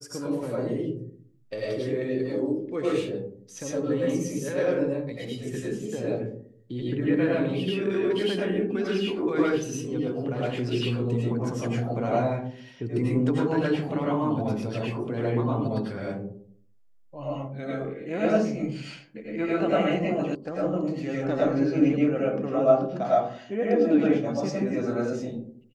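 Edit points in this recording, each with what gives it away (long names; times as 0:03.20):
0:20.35: cut off before it has died away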